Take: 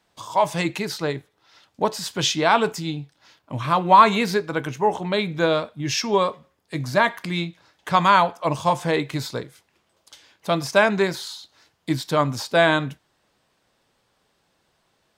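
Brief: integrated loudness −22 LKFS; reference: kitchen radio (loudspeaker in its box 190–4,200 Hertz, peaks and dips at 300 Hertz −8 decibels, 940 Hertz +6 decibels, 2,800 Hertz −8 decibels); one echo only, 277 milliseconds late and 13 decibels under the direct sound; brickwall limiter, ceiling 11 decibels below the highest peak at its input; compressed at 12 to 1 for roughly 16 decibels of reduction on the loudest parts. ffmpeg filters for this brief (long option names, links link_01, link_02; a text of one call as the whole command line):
ffmpeg -i in.wav -af "acompressor=threshold=-24dB:ratio=12,alimiter=limit=-23.5dB:level=0:latency=1,highpass=190,equalizer=frequency=300:width_type=q:width=4:gain=-8,equalizer=frequency=940:width_type=q:width=4:gain=6,equalizer=frequency=2800:width_type=q:width=4:gain=-8,lowpass=frequency=4200:width=0.5412,lowpass=frequency=4200:width=1.3066,aecho=1:1:277:0.224,volume=13dB" out.wav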